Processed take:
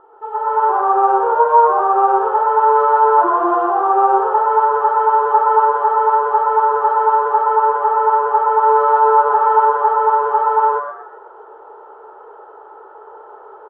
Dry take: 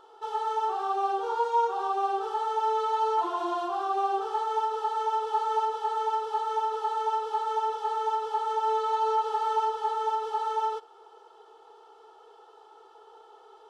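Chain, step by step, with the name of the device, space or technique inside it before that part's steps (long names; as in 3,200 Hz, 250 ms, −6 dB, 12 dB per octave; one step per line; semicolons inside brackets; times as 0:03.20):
0:07.47–0:08.61: notch filter 3,700 Hz, Q 6.2
echo with shifted repeats 121 ms, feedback 35%, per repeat +140 Hz, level −9 dB
action camera in a waterproof case (low-pass filter 1,600 Hz 24 dB per octave; automatic gain control gain up to 8 dB; level +6 dB; AAC 48 kbit/s 24,000 Hz)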